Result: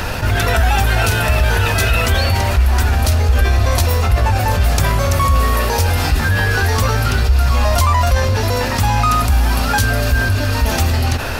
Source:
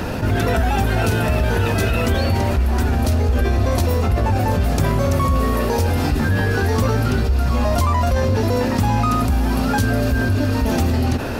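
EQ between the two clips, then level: peaking EQ 260 Hz -14 dB 2.5 oct; +8.5 dB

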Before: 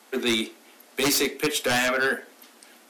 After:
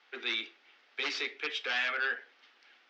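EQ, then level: distance through air 180 m; cabinet simulation 470–4900 Hz, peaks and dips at 630 Hz -7 dB, 1 kHz -5 dB, 4.2 kHz -4 dB; tilt shelf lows -7 dB, about 1.2 kHz; -6.5 dB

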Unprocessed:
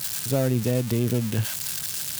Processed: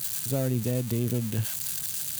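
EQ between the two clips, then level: bass shelf 460 Hz +5 dB; treble shelf 4.7 kHz +7.5 dB; band-stop 5.3 kHz, Q 12; -8.0 dB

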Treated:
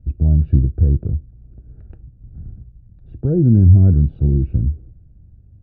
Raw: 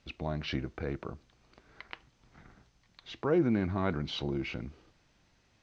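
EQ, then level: boxcar filter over 42 samples; tilt EQ -4.5 dB/octave; peaking EQ 86 Hz +14 dB 1.8 oct; 0.0 dB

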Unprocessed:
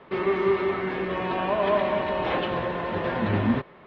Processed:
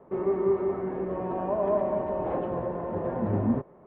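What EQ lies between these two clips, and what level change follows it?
Chebyshev low-pass 680 Hz, order 2; -1.5 dB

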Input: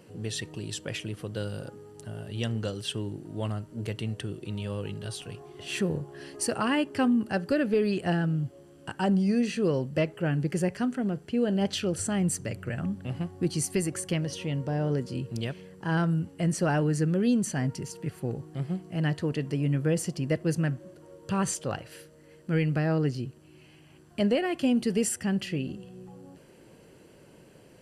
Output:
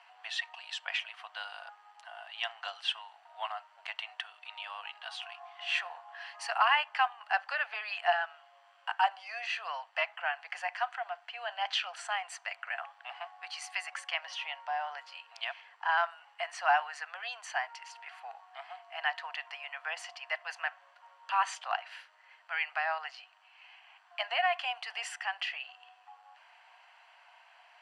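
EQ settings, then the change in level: rippled Chebyshev high-pass 690 Hz, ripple 3 dB; low-pass 2.7 kHz 12 dB/octave; +7.5 dB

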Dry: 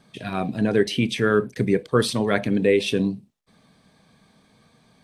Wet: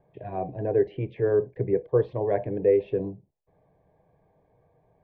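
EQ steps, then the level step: low-pass 1.5 kHz 24 dB/octave; static phaser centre 550 Hz, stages 4; 0.0 dB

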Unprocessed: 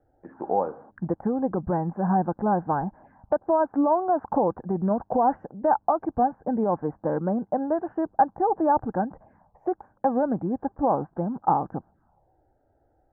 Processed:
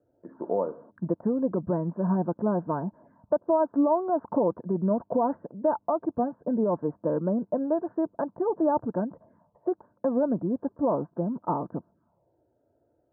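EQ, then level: high-pass 130 Hz 12 dB/octave; Butterworth band-stop 790 Hz, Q 4.7; low-pass 1 kHz 12 dB/octave; 0.0 dB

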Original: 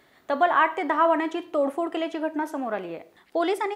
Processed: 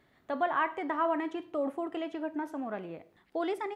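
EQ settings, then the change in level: tone controls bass +9 dB, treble -5 dB; -9.0 dB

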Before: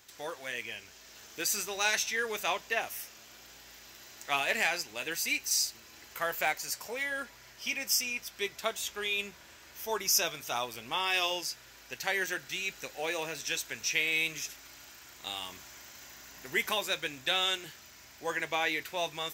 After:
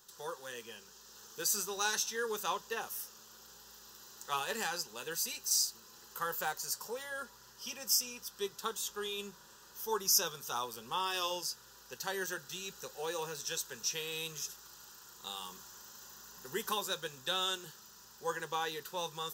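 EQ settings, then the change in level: static phaser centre 440 Hz, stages 8; 0.0 dB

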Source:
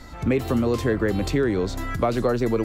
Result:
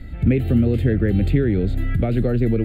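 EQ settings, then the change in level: tone controls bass +10 dB, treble -6 dB; static phaser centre 2.5 kHz, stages 4; 0.0 dB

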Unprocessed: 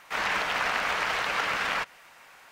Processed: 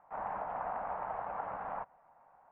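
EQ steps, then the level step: four-pole ladder low-pass 930 Hz, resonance 50%; peaking EQ 380 Hz -9 dB 0.98 oct; +2.0 dB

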